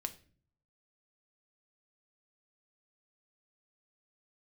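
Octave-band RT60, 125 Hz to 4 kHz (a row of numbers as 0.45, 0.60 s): 0.90, 0.75, 0.55, 0.35, 0.40, 0.35 s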